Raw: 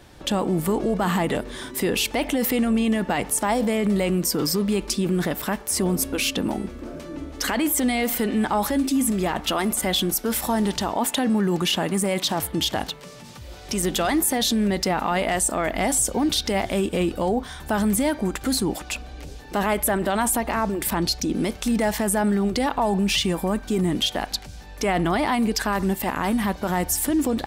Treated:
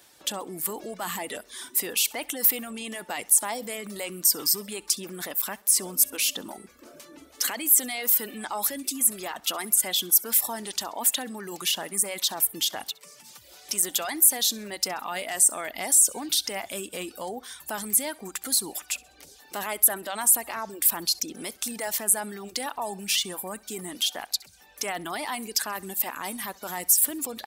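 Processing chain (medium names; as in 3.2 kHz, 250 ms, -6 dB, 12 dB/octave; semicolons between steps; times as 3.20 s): high-pass 620 Hz 6 dB/octave; treble shelf 9.3 kHz +5.5 dB; reverb removal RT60 0.67 s; treble shelf 4.5 kHz +11 dB; on a send: feedback delay 66 ms, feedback 42%, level -23 dB; on the sum: trim -7 dB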